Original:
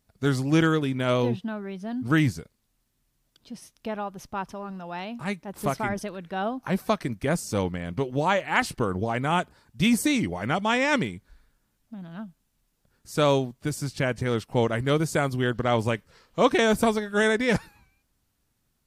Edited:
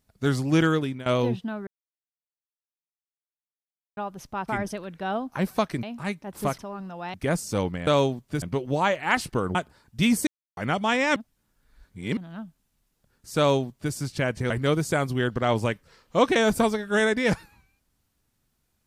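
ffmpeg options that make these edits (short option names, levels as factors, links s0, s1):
-filter_complex "[0:a]asplit=16[s0][s1][s2][s3][s4][s5][s6][s7][s8][s9][s10][s11][s12][s13][s14][s15];[s0]atrim=end=1.06,asetpts=PTS-STARTPTS,afade=t=out:st=0.8:d=0.26:silence=0.158489[s16];[s1]atrim=start=1.06:end=1.67,asetpts=PTS-STARTPTS,afade=t=in:d=0.004:c=hsin:silence=0.158489,afade=t=out:st=0.606:d=0.004:c=hsin[s17];[s2]atrim=start=1.67:end=3.97,asetpts=PTS-STARTPTS,volume=0[s18];[s3]atrim=start=3.97:end=4.482,asetpts=PTS-STARTPTS,afade=t=in:d=0.004:c=hsin[s19];[s4]atrim=start=5.788:end=7.142[s20];[s5]atrim=start=5.038:end=5.792[s21];[s6]atrim=start=4.478:end=5.042[s22];[s7]atrim=start=7.138:end=7.872[s23];[s8]atrim=start=13.188:end=13.742[s24];[s9]atrim=start=7.868:end=9.002[s25];[s10]atrim=start=9.358:end=10.08,asetpts=PTS-STARTPTS,afade=t=out:st=0.718:d=0.004:c=hsin[s26];[s11]atrim=start=10.08:end=10.38,asetpts=PTS-STARTPTS,volume=0[s27];[s12]atrim=start=10.38:end=10.972,asetpts=PTS-STARTPTS,afade=t=in:d=0.004:c=hsin[s28];[s13]atrim=start=10.968:end=11.982,asetpts=PTS-STARTPTS,areverse[s29];[s14]atrim=start=11.978:end=14.312[s30];[s15]atrim=start=14.728[s31];[s16][s17][s18][s19]concat=n=4:v=0:a=1[s32];[s32][s20]acrossfade=d=0.004:c1=hsin:c2=hsin[s33];[s33][s21]acrossfade=d=0.004:c1=hsin:c2=hsin[s34];[s34][s22]acrossfade=d=0.004:c1=hsin:c2=hsin[s35];[s35][s23]acrossfade=d=0.004:c1=hsin:c2=hsin[s36];[s36][s24]acrossfade=d=0.004:c1=hsin:c2=hsin[s37];[s37][s25]acrossfade=d=0.004:c1=hsin:c2=hsin[s38];[s26][s27][s28]concat=n=3:v=0:a=1[s39];[s38][s39]acrossfade=d=0.004:c1=hsin:c2=hsin[s40];[s40][s29]acrossfade=d=0.004:c1=hsin:c2=hsin[s41];[s41][s30]acrossfade=d=0.004:c1=hsin:c2=hsin[s42];[s42][s31]acrossfade=d=0.004:c1=hsin:c2=hsin"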